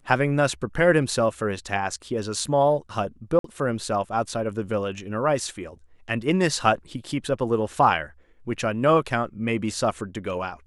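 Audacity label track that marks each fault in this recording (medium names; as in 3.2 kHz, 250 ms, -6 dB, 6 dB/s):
3.390000	3.440000	dropout 53 ms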